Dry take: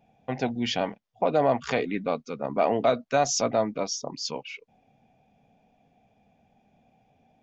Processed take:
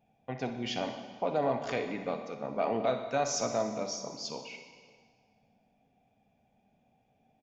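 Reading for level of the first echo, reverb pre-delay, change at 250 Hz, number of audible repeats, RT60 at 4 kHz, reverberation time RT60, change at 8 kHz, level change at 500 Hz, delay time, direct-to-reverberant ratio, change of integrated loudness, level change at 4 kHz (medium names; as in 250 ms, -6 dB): -13.0 dB, 5 ms, -6.5 dB, 1, 1.6 s, 1.7 s, no reading, -6.5 dB, 61 ms, 5.0 dB, -6.5 dB, -6.5 dB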